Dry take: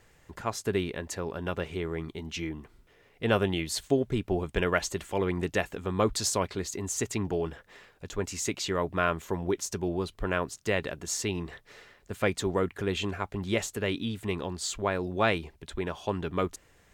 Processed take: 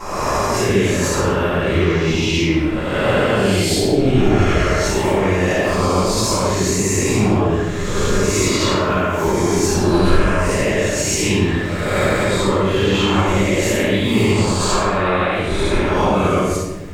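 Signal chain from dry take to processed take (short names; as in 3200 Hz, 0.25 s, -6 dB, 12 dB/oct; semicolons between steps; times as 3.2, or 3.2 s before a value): spectral swells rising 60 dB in 1.50 s; compressor, threshold -28 dBFS, peak gain reduction 11 dB; limiter -23.5 dBFS, peak gain reduction 10.5 dB; shoebox room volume 590 m³, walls mixed, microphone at 9.8 m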